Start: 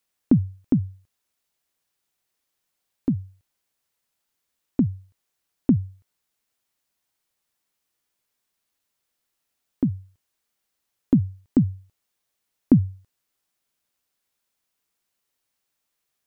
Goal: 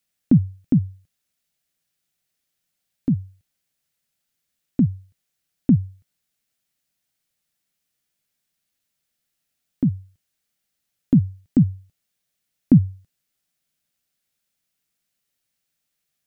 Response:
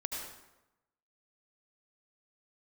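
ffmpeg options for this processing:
-af "equalizer=f=160:t=o:w=0.67:g=6,equalizer=f=400:t=o:w=0.67:g=-5,equalizer=f=1k:t=o:w=0.67:g=-9,volume=1dB"

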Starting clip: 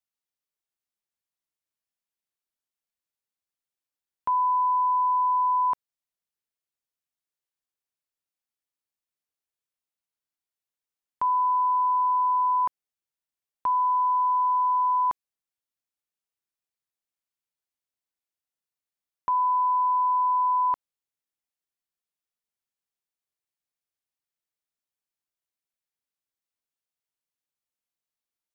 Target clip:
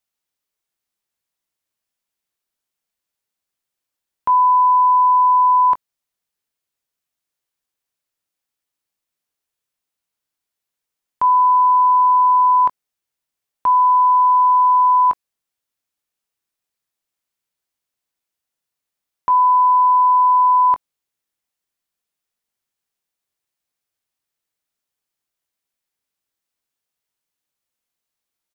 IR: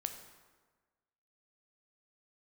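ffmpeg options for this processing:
-filter_complex "[0:a]asplit=2[a][b];[b]adelay=21,volume=-12dB[c];[a][c]amix=inputs=2:normalize=0,volume=8dB"

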